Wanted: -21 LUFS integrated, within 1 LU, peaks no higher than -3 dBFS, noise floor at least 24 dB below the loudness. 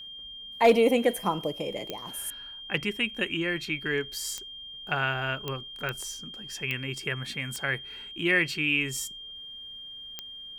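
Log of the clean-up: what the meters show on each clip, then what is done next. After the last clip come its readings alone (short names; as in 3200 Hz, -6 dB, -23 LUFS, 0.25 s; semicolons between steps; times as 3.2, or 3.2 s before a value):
clicks 7; steady tone 3200 Hz; tone level -40 dBFS; loudness -28.5 LUFS; peak -11.0 dBFS; loudness target -21.0 LUFS
-> de-click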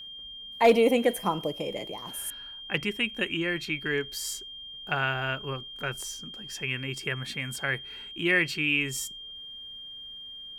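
clicks 0; steady tone 3200 Hz; tone level -40 dBFS
-> notch 3200 Hz, Q 30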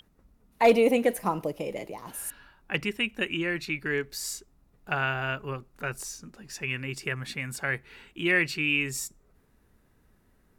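steady tone none; loudness -28.5 LUFS; peak -11.0 dBFS; loudness target -21.0 LUFS
-> gain +7.5 dB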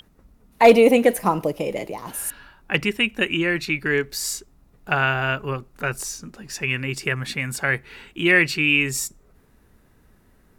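loudness -21.0 LUFS; peak -3.5 dBFS; noise floor -58 dBFS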